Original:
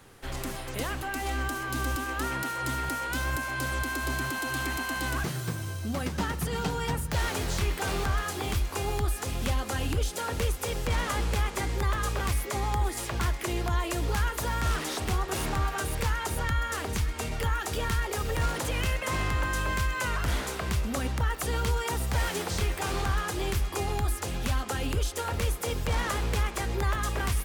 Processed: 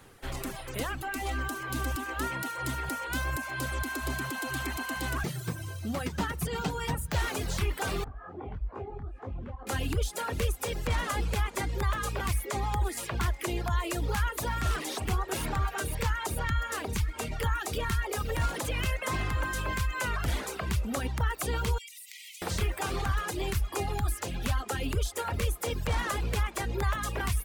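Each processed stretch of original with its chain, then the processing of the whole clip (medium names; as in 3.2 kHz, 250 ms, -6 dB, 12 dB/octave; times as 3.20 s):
8.04–9.67 s: low-pass 1 kHz + compression, threshold -28 dBFS + detune thickener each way 56 cents
21.78–22.42 s: brick-wall FIR high-pass 1.9 kHz + compression 12:1, threshold -40 dBFS
whole clip: reverb removal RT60 0.87 s; peaking EQ 5.5 kHz -2 dB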